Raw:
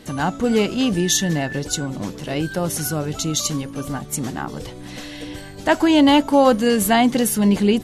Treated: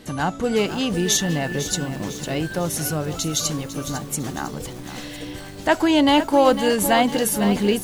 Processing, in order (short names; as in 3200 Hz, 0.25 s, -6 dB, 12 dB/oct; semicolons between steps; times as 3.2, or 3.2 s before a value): dynamic EQ 240 Hz, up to -5 dB, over -30 dBFS, Q 2.4; lo-fi delay 0.502 s, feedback 55%, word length 6-bit, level -10.5 dB; gain -1 dB